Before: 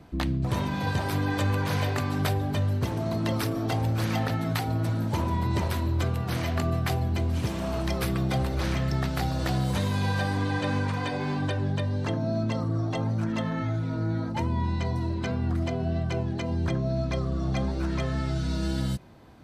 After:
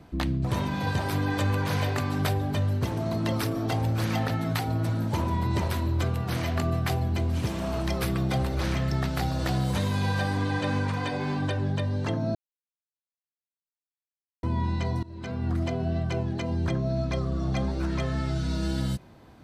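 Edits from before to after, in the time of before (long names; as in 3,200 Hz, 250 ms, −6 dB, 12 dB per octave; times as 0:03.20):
0:12.35–0:14.43: silence
0:15.03–0:15.52: fade in, from −22.5 dB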